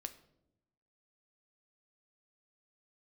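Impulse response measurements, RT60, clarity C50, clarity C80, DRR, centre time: 0.85 s, 14.5 dB, 17.5 dB, 8.5 dB, 6 ms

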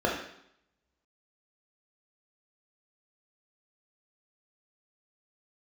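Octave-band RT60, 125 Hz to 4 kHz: 0.80, 0.75, 0.70, 0.75, 0.70, 0.70 seconds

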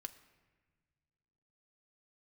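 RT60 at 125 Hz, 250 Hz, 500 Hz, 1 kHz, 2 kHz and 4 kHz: 2.8, 2.3, 1.6, 1.4, 1.5, 0.95 seconds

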